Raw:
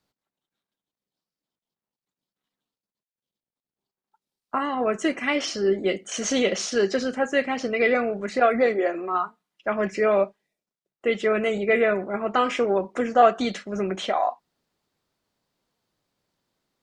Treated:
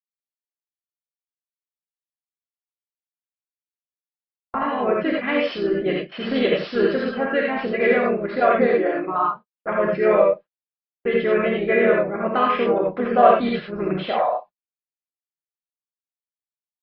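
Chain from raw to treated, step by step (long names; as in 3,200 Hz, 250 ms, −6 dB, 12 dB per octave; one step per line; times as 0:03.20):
noise gate −35 dBFS, range −47 dB
reverb whose tail is shaped and stops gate 110 ms rising, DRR −1.5 dB
downsampling to 11,025 Hz
high-frequency loss of the air 240 metres
pitch-shifted copies added −3 semitones −6 dB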